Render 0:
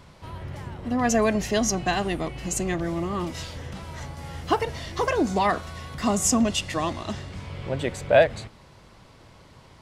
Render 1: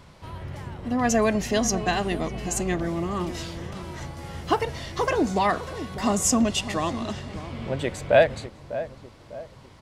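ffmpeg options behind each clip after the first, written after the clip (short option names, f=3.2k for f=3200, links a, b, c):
-filter_complex "[0:a]asplit=2[a][b];[b]adelay=600,lowpass=f=910:p=1,volume=-11.5dB,asplit=2[c][d];[d]adelay=600,lowpass=f=910:p=1,volume=0.47,asplit=2[e][f];[f]adelay=600,lowpass=f=910:p=1,volume=0.47,asplit=2[g][h];[h]adelay=600,lowpass=f=910:p=1,volume=0.47,asplit=2[i][j];[j]adelay=600,lowpass=f=910:p=1,volume=0.47[k];[a][c][e][g][i][k]amix=inputs=6:normalize=0"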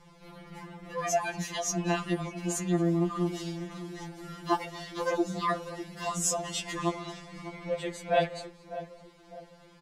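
-filter_complex "[0:a]asplit=2[a][b];[b]adelay=227.4,volume=-21dB,highshelf=f=4k:g=-5.12[c];[a][c]amix=inputs=2:normalize=0,afftfilt=real='re*2.83*eq(mod(b,8),0)':imag='im*2.83*eq(mod(b,8),0)':win_size=2048:overlap=0.75,volume=-3dB"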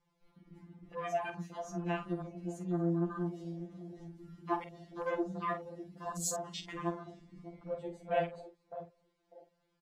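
-filter_complex "[0:a]afwtdn=0.0158,asplit=2[a][b];[b]adelay=47,volume=-10.5dB[c];[a][c]amix=inputs=2:normalize=0,volume=-6.5dB"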